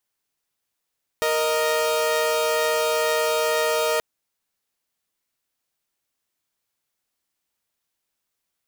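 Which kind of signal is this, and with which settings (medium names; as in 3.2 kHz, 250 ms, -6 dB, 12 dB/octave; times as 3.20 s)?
chord A#4/D#5 saw, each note -20 dBFS 2.78 s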